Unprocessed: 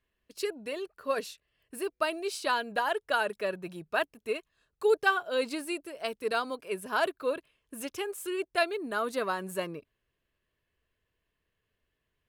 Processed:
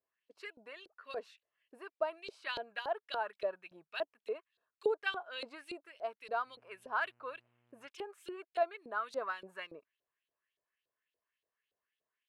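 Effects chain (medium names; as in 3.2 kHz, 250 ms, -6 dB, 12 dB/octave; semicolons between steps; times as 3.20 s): LFO band-pass saw up 3.5 Hz 490–4100 Hz; 6.45–7.87 s: mains buzz 120 Hz, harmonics 25, -75 dBFS -5 dB/octave; trim -1 dB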